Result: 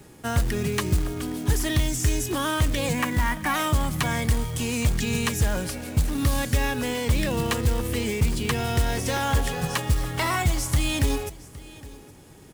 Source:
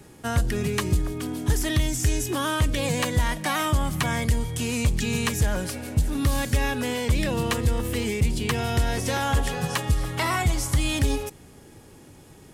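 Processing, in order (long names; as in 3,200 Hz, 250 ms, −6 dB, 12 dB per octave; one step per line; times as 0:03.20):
0:02.93–0:03.54: octave-band graphic EQ 125/250/500/1,000/2,000/4,000/8,000 Hz −5/+6/−9/+4/+4/−9/−5 dB
floating-point word with a short mantissa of 2 bits
single-tap delay 814 ms −20 dB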